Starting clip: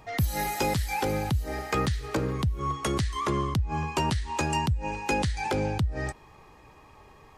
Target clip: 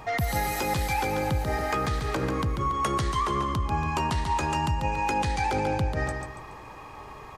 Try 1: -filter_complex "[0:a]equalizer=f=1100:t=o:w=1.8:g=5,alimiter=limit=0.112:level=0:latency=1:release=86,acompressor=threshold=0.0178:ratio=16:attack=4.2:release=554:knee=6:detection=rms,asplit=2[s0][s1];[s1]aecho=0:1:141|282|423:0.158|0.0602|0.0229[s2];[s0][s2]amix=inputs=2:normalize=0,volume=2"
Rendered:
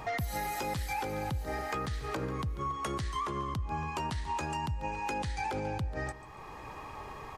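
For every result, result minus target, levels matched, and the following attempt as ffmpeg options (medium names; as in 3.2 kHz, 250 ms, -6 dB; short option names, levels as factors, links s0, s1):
echo-to-direct -10.5 dB; compression: peak gain reduction +7 dB
-filter_complex "[0:a]equalizer=f=1100:t=o:w=1.8:g=5,alimiter=limit=0.112:level=0:latency=1:release=86,acompressor=threshold=0.0178:ratio=16:attack=4.2:release=554:knee=6:detection=rms,asplit=2[s0][s1];[s1]aecho=0:1:141|282|423|564|705:0.531|0.202|0.0767|0.0291|0.0111[s2];[s0][s2]amix=inputs=2:normalize=0,volume=2"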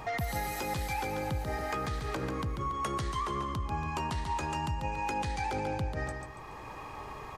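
compression: peak gain reduction +7 dB
-filter_complex "[0:a]equalizer=f=1100:t=o:w=1.8:g=5,alimiter=limit=0.112:level=0:latency=1:release=86,acompressor=threshold=0.0422:ratio=16:attack=4.2:release=554:knee=6:detection=rms,asplit=2[s0][s1];[s1]aecho=0:1:141|282|423|564|705:0.531|0.202|0.0767|0.0291|0.0111[s2];[s0][s2]amix=inputs=2:normalize=0,volume=2"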